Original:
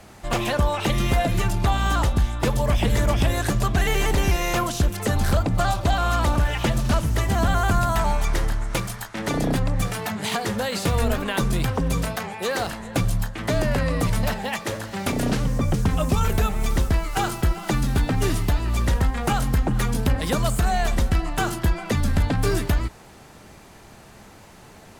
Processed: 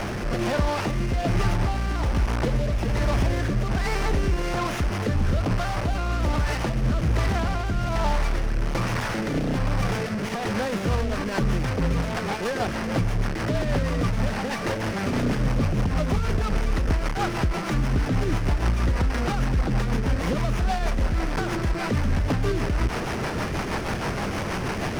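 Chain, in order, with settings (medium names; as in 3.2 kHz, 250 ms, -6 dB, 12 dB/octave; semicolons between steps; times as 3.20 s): one-bit delta coder 32 kbps, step -22 dBFS; peak limiter -17 dBFS, peak gain reduction 6.5 dB; rotary cabinet horn 1.2 Hz, later 6.3 Hz, at 10.45 s; sliding maximum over 9 samples; trim +3.5 dB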